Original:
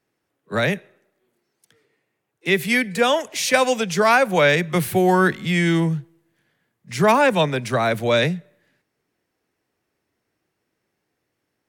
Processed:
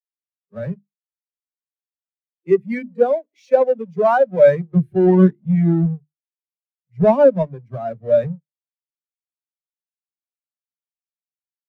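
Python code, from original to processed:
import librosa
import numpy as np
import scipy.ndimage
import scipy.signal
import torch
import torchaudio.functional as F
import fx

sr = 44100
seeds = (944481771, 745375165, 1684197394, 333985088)

y = fx.halfwave_hold(x, sr)
y = fx.hum_notches(y, sr, base_hz=50, count=7)
y = fx.spectral_expand(y, sr, expansion=2.5)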